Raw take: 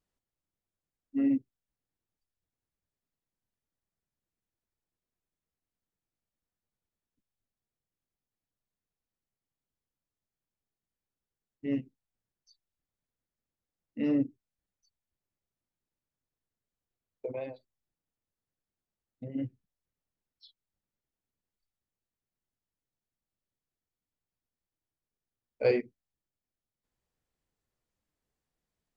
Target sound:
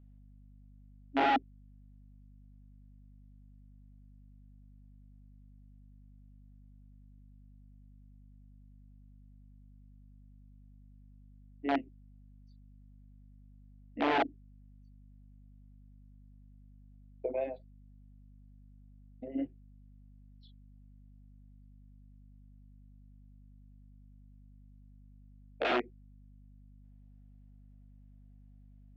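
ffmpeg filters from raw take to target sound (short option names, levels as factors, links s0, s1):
-af "aeval=exprs='(mod(15.8*val(0)+1,2)-1)/15.8':c=same,highpass=f=240:w=0.5412,highpass=f=240:w=1.3066,equalizer=f=340:t=q:w=4:g=4,equalizer=f=690:t=q:w=4:g=10,equalizer=f=1100:t=q:w=4:g=-4,lowpass=f=3200:w=0.5412,lowpass=f=3200:w=1.3066,aeval=exprs='val(0)+0.00178*(sin(2*PI*50*n/s)+sin(2*PI*2*50*n/s)/2+sin(2*PI*3*50*n/s)/3+sin(2*PI*4*50*n/s)/4+sin(2*PI*5*50*n/s)/5)':c=same"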